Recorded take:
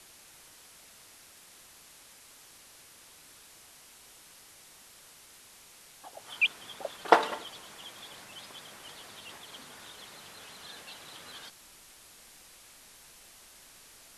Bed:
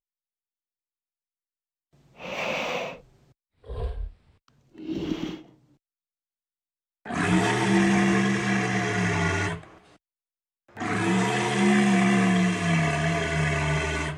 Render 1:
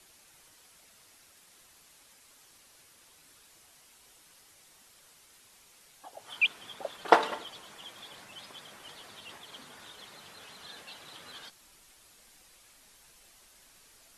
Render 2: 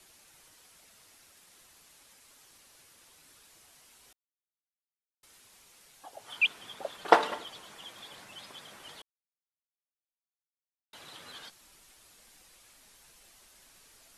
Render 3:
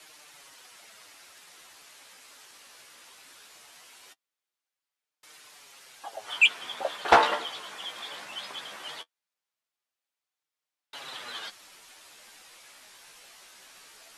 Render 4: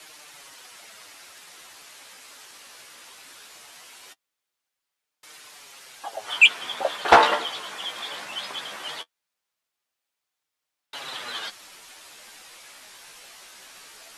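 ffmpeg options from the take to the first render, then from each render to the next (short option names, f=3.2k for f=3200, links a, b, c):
-af "afftdn=nr=6:nf=-55"
-filter_complex "[0:a]asplit=5[a][b][c][d][e];[a]atrim=end=4.13,asetpts=PTS-STARTPTS,afade=t=out:st=4.126:d=0.004:c=hsin[f];[b]atrim=start=4.13:end=5.23,asetpts=PTS-STARTPTS,volume=0[g];[c]atrim=start=5.23:end=9.02,asetpts=PTS-STARTPTS,afade=t=in:d=0.004:c=hsin,afade=t=out:st=3.786:d=0.004:c=hsin[h];[d]atrim=start=9.02:end=10.93,asetpts=PTS-STARTPTS,volume=0[i];[e]atrim=start=10.93,asetpts=PTS-STARTPTS,afade=t=in:d=0.004:c=hsin[j];[f][g][h][i][j]concat=n=5:v=0:a=1"
-filter_complex "[0:a]asplit=2[a][b];[b]highpass=f=720:p=1,volume=20dB,asoftclip=type=tanh:threshold=-1.5dB[c];[a][c]amix=inputs=2:normalize=0,lowpass=f=4.2k:p=1,volume=-6dB,flanger=delay=6.5:depth=9.7:regen=28:speed=0.19:shape=sinusoidal"
-af "volume=5.5dB,alimiter=limit=-3dB:level=0:latency=1"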